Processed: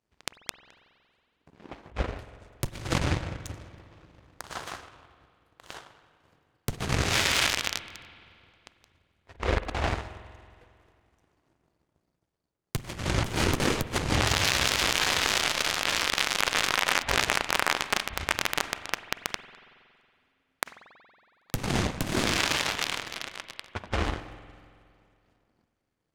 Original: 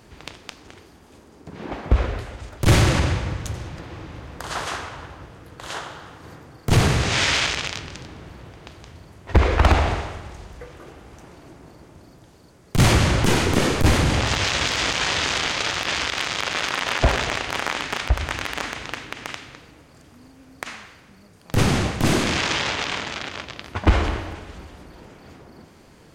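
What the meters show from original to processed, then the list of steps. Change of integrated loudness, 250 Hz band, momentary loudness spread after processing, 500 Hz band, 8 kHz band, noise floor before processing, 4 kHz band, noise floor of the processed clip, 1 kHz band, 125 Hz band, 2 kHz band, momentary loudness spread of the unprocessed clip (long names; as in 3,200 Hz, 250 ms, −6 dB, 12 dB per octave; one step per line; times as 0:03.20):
−5.5 dB, −9.0 dB, 17 LU, −7.5 dB, −2.5 dB, −50 dBFS, −3.5 dB, −78 dBFS, −5.5 dB, −11.5 dB, −4.0 dB, 20 LU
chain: power curve on the samples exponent 2
compressor whose output falls as the input rises −29 dBFS, ratio −0.5
spring reverb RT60 2.3 s, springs 46 ms, chirp 50 ms, DRR 13 dB
level +2 dB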